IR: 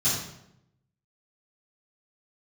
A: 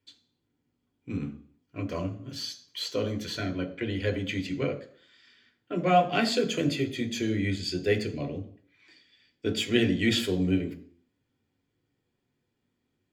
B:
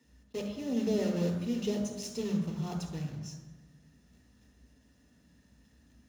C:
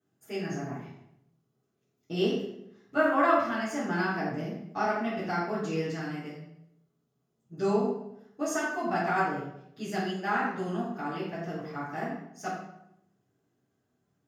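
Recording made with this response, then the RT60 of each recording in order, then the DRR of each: C; 0.55 s, 1.2 s, 0.80 s; 4.5 dB, 2.0 dB, -13.0 dB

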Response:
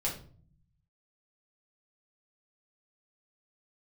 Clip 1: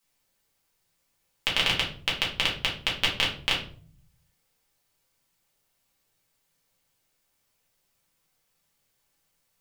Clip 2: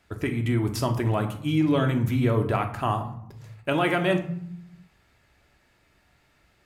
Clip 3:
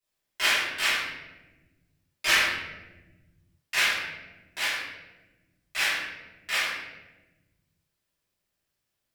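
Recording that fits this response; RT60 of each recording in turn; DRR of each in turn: 1; 0.45 s, 0.65 s, 1.2 s; -4.5 dB, 4.5 dB, -15.5 dB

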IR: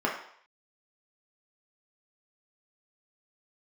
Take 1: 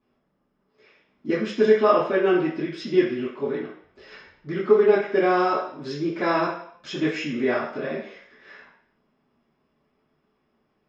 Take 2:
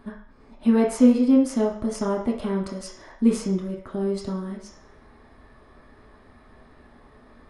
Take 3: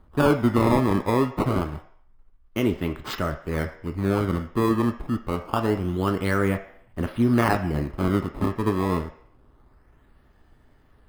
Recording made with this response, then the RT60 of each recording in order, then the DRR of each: 2; 0.65 s, 0.65 s, 0.65 s; -10.5 dB, -3.0 dB, 6.5 dB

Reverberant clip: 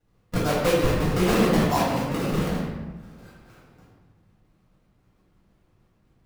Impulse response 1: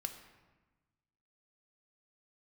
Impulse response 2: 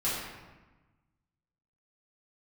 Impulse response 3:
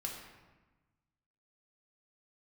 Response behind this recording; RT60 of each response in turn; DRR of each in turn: 2; 1.2 s, 1.2 s, 1.2 s; 6.5 dB, -9.5 dB, -0.5 dB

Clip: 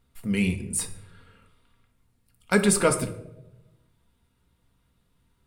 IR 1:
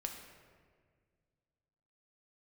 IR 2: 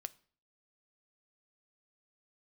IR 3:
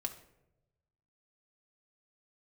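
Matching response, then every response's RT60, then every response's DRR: 3; 1.8 s, 0.50 s, 0.90 s; 2.5 dB, 13.0 dB, 4.0 dB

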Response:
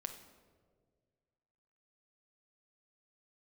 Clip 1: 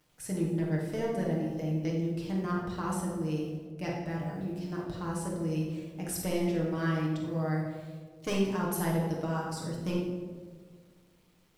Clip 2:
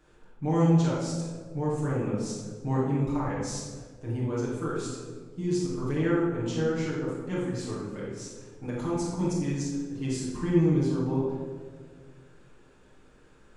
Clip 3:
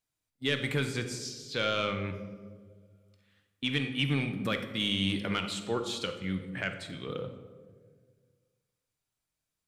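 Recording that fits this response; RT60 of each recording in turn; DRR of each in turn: 3; 1.7 s, 1.7 s, 1.8 s; -3.5 dB, -8.0 dB, 6.0 dB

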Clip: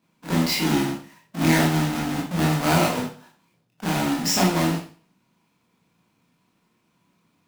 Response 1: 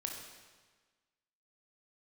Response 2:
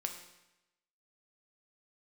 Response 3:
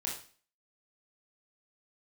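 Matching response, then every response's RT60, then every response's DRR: 3; 1.4 s, 0.95 s, 0.40 s; 1.0 dB, 4.0 dB, -3.5 dB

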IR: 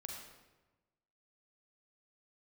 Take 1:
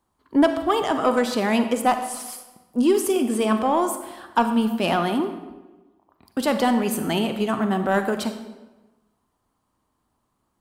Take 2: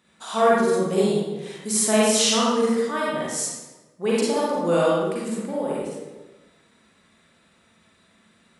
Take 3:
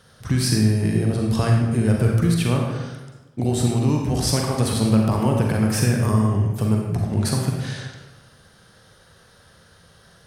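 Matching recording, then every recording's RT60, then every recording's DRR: 3; 1.2 s, 1.2 s, 1.2 s; 8.0 dB, -7.0 dB, 0.0 dB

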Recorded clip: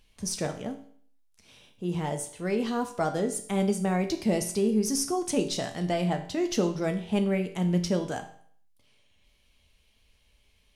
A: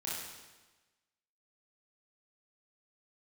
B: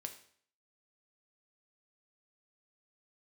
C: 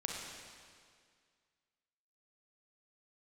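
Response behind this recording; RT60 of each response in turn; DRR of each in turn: B; 1.2 s, 0.55 s, 2.0 s; -7.5 dB, 5.0 dB, -1.5 dB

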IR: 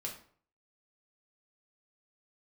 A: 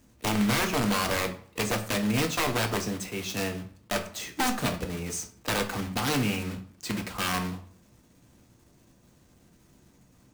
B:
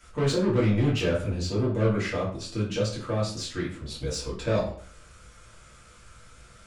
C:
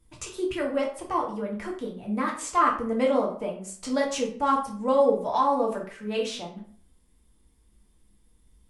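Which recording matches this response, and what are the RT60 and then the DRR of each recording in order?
C; 0.50 s, 0.50 s, 0.50 s; 5.0 dB, -7.0 dB, -2.0 dB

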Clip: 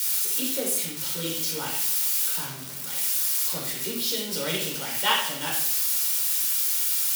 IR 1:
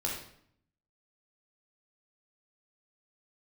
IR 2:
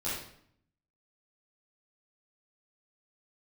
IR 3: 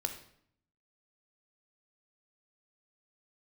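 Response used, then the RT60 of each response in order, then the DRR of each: 1; 0.65 s, 0.65 s, 0.65 s; -3.0 dB, -11.5 dB, 5.5 dB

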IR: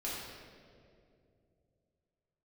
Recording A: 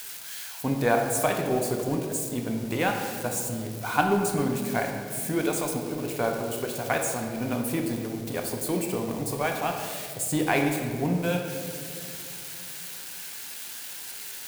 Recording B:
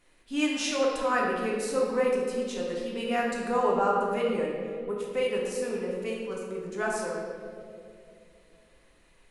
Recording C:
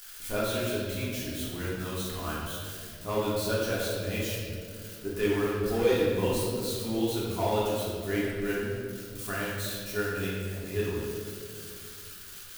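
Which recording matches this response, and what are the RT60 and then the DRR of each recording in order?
C; 2.6 s, 2.5 s, 2.5 s; 2.0 dB, -3.5 dB, -8.0 dB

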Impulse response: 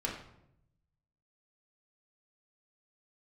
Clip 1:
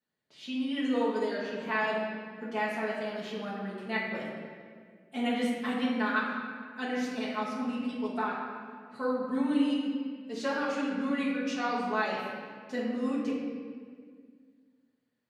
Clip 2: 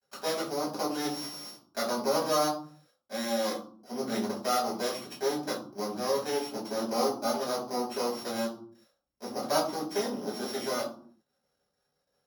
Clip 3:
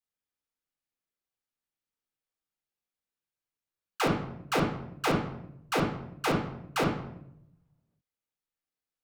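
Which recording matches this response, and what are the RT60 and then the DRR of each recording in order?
3; 1.9 s, 0.55 s, 0.80 s; -7.0 dB, -6.0 dB, -2.0 dB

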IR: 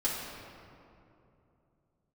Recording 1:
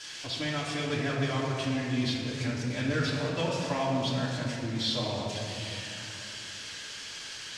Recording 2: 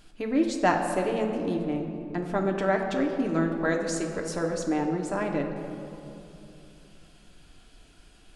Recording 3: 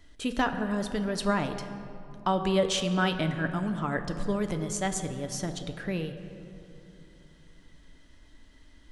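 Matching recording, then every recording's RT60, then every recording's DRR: 1; 2.8 s, 2.9 s, 2.9 s; -8.0 dB, 1.5 dB, 6.5 dB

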